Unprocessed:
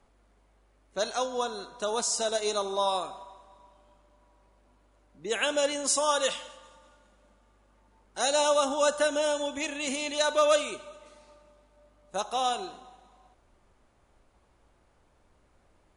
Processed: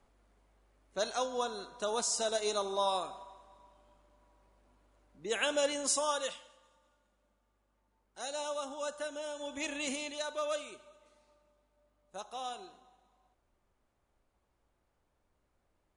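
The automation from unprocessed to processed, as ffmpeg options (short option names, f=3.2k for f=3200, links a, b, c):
-af "volume=6.5dB,afade=t=out:st=5.87:d=0.54:silence=0.334965,afade=t=in:st=9.35:d=0.4:silence=0.298538,afade=t=out:st=9.75:d=0.49:silence=0.334965"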